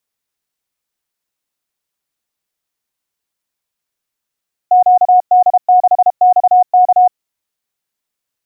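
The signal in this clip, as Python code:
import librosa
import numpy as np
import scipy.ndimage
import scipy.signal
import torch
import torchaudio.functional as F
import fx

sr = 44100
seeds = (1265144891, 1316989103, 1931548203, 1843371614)

y = fx.morse(sr, text='QD6XK', wpm=32, hz=729.0, level_db=-4.5)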